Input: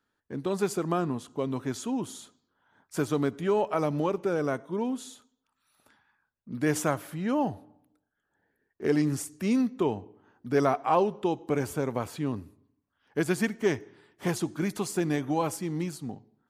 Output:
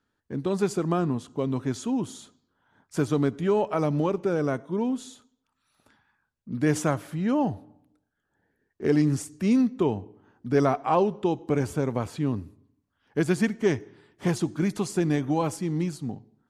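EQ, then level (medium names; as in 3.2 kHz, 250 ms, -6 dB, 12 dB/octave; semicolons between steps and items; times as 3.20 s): distance through air 68 m; bass shelf 290 Hz +7 dB; treble shelf 7 kHz +11.5 dB; 0.0 dB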